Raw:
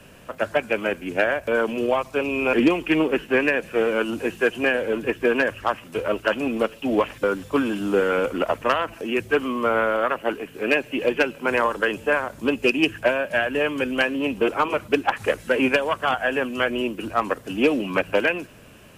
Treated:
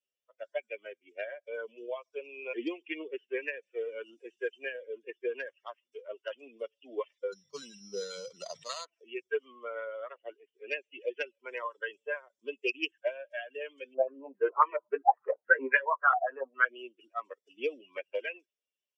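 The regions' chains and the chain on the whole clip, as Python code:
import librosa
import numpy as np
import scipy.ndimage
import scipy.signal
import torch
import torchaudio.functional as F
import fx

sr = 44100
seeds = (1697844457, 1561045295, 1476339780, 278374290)

y = fx.chain(x, sr, fx.low_shelf_res(hz=220.0, db=9.5, q=3.0),
    fx.resample_bad(factor=8, down='none', up='hold'),
    fx.sustainer(db_per_s=33.0), at=(7.32, 8.85))
y = fx.chain(y, sr, fx.doubler(ms=15.0, db=-5.0),
    fx.filter_held_lowpass(hz=7.3, low_hz=730.0, high_hz=1800.0), at=(13.94, 16.65))
y = fx.bin_expand(y, sr, power=2.0)
y = scipy.signal.sosfilt(scipy.signal.cheby1(3, 1.0, [400.0, 6300.0], 'bandpass', fs=sr, output='sos'), y)
y = F.gain(torch.from_numpy(y), -7.0).numpy()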